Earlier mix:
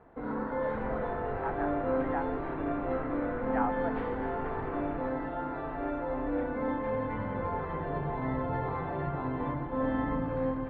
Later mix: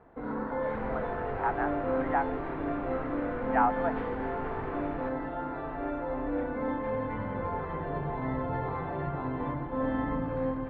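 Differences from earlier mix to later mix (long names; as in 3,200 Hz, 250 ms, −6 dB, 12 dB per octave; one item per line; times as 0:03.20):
speech +7.0 dB
second sound: remove high-frequency loss of the air 350 metres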